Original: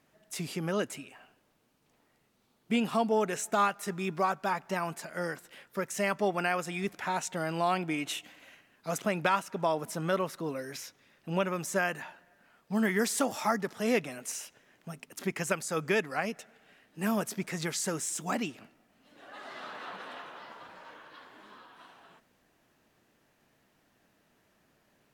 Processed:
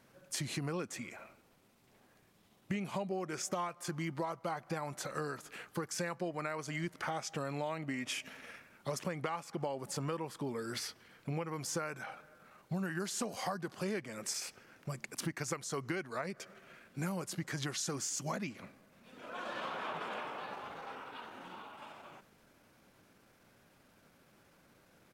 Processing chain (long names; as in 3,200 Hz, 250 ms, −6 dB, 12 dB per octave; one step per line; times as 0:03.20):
pitch shifter −2.5 semitones
downward compressor 6 to 1, threshold −39 dBFS, peak gain reduction 16 dB
level +4 dB